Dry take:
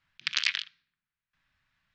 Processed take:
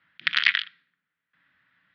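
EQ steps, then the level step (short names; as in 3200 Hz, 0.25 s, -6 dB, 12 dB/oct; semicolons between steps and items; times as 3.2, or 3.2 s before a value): air absorption 180 m; speaker cabinet 140–5100 Hz, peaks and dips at 180 Hz +5 dB, 290 Hz +9 dB, 490 Hz +7 dB, 1400 Hz +7 dB, 1900 Hz +9 dB, 3300 Hz +5 dB; +5.0 dB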